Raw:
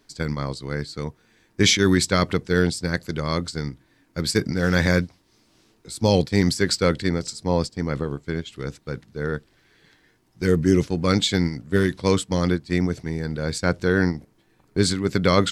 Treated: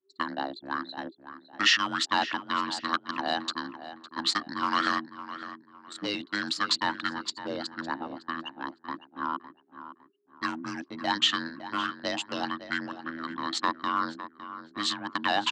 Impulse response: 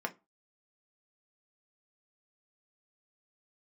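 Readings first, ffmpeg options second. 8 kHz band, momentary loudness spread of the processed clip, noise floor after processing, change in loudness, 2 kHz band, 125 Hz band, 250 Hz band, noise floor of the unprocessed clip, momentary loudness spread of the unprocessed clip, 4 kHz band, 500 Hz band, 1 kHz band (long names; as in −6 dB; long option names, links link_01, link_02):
−11.0 dB, 15 LU, −62 dBFS, −7.5 dB, −3.0 dB, −27.0 dB, −13.5 dB, −62 dBFS, 13 LU, −1.5 dB, −16.5 dB, +2.0 dB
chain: -filter_complex "[0:a]anlmdn=25.1,acompressor=threshold=-24dB:ratio=2.5,asoftclip=type=hard:threshold=-15dB,afreqshift=-410,highpass=650,lowpass=4000,asplit=2[link_01][link_02];[link_02]adelay=558,lowpass=frequency=2500:poles=1,volume=-12dB,asplit=2[link_03][link_04];[link_04]adelay=558,lowpass=frequency=2500:poles=1,volume=0.32,asplit=2[link_05][link_06];[link_06]adelay=558,lowpass=frequency=2500:poles=1,volume=0.32[link_07];[link_03][link_05][link_07]amix=inputs=3:normalize=0[link_08];[link_01][link_08]amix=inputs=2:normalize=0,volume=6.5dB"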